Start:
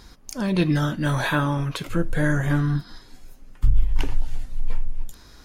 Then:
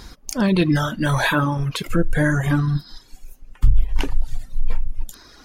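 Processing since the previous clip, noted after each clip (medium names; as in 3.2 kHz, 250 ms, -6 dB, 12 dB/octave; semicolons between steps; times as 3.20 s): in parallel at +2.5 dB: peak limiter -17 dBFS, peak gain reduction 11 dB; on the sum: reverb removal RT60 1.7 s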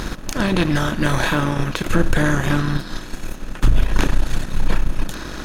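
spectral levelling over time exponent 0.4; reverse; upward compressor, threshold -17 dBFS; reverse; power-law waveshaper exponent 1.4; trim -1 dB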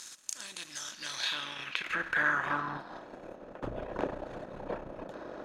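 band-pass sweep 7.6 kHz -> 580 Hz, 0.67–3.17 s; trim -1.5 dB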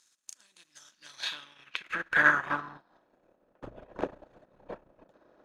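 upward expansion 2.5:1, over -45 dBFS; trim +8.5 dB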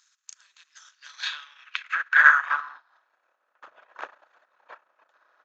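resonant high-pass 1.3 kHz, resonance Q 1.9; resampled via 16 kHz; trim +2 dB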